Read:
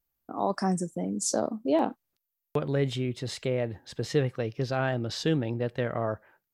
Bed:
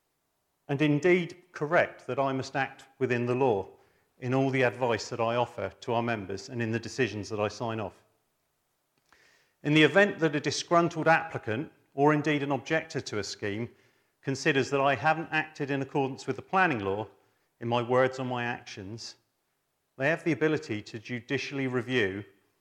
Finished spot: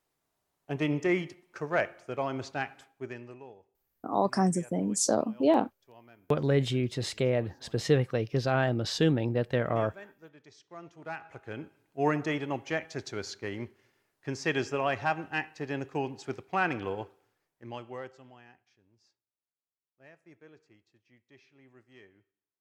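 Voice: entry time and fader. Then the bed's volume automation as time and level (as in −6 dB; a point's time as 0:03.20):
3.75 s, +1.5 dB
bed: 0:02.82 −4 dB
0:03.56 −26.5 dB
0:10.61 −26.5 dB
0:11.77 −4 dB
0:17.15 −4 dB
0:18.75 −28.5 dB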